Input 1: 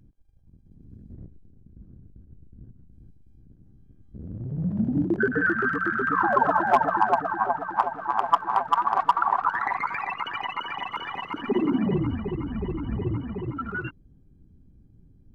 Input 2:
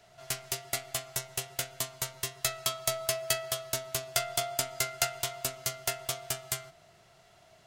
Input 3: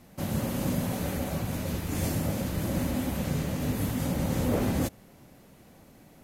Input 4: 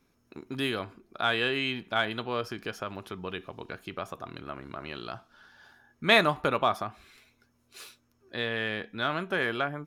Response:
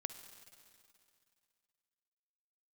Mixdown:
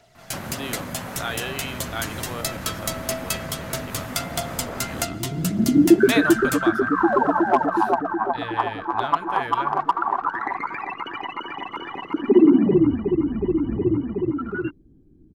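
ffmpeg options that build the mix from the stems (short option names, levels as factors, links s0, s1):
-filter_complex "[0:a]equalizer=f=330:t=o:w=0.94:g=14.5,adelay=800,volume=0.841[s0];[1:a]aphaser=in_gain=1:out_gain=1:delay=1.3:decay=0.39:speed=1.6:type=triangular,volume=1.19[s1];[2:a]equalizer=f=1400:t=o:w=1.9:g=14,acompressor=threshold=0.0316:ratio=6,adelay=150,volume=0.944[s2];[3:a]asubboost=boost=9.5:cutoff=69,volume=0.708[s3];[s0][s1][s2][s3]amix=inputs=4:normalize=0"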